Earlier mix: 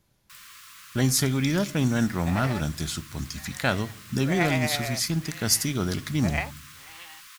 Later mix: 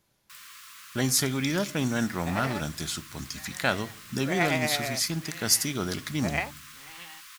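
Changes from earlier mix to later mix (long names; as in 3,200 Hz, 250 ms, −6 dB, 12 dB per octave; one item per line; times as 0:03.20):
speech: add low-shelf EQ 180 Hz −10 dB
second sound: remove high-pass filter 320 Hz 12 dB per octave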